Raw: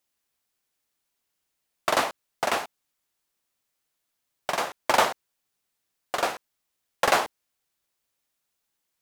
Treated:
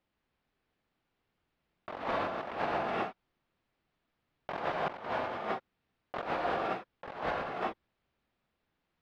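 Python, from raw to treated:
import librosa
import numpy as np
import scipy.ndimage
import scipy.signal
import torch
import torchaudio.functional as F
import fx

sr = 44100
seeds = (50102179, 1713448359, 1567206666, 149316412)

y = fx.low_shelf(x, sr, hz=310.0, db=8.5)
y = fx.rev_gated(y, sr, seeds[0], gate_ms=480, shape='rising', drr_db=4.0)
y = fx.over_compress(y, sr, threshold_db=-33.0, ratio=-1.0)
y = fx.air_absorb(y, sr, metres=350.0)
y = F.gain(torch.from_numpy(y), -1.5).numpy()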